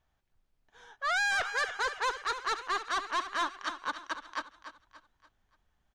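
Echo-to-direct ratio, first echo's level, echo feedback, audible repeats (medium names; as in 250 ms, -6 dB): -10.5 dB, -11.0 dB, 39%, 3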